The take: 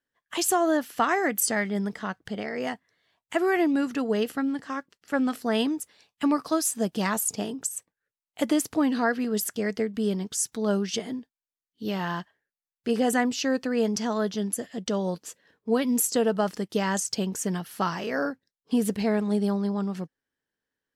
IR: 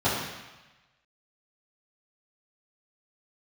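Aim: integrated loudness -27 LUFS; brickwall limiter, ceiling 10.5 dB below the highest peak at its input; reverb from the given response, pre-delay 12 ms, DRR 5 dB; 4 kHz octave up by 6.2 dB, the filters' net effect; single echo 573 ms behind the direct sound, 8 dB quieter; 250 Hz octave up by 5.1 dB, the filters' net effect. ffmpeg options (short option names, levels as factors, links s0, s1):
-filter_complex "[0:a]equalizer=f=250:t=o:g=6,equalizer=f=4000:t=o:g=8.5,alimiter=limit=0.133:level=0:latency=1,aecho=1:1:573:0.398,asplit=2[s0][s1];[1:a]atrim=start_sample=2205,adelay=12[s2];[s1][s2]afir=irnorm=-1:irlink=0,volume=0.1[s3];[s0][s3]amix=inputs=2:normalize=0,volume=0.708"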